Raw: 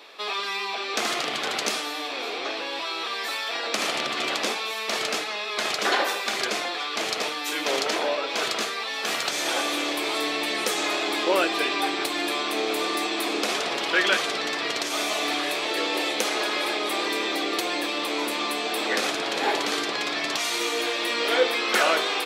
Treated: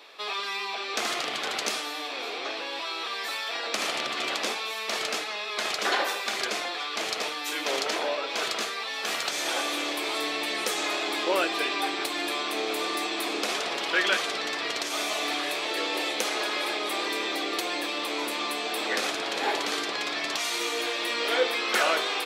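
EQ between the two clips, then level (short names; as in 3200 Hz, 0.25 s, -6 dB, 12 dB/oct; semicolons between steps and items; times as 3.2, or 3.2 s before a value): bell 130 Hz -3.5 dB 3 oct; -2.5 dB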